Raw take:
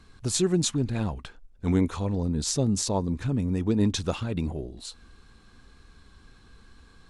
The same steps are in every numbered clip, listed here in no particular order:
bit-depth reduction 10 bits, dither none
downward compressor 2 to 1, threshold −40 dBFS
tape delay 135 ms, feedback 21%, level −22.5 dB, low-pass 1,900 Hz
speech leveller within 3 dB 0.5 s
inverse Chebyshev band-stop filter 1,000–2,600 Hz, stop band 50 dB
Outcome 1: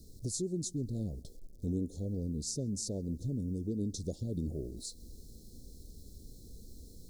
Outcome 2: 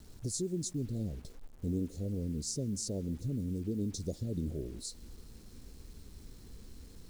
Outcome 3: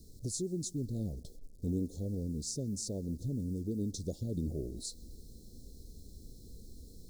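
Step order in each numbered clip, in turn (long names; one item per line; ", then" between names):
bit-depth reduction, then speech leveller, then downward compressor, then tape delay, then inverse Chebyshev band-stop filter
speech leveller, then inverse Chebyshev band-stop filter, then downward compressor, then tape delay, then bit-depth reduction
downward compressor, then speech leveller, then bit-depth reduction, then inverse Chebyshev band-stop filter, then tape delay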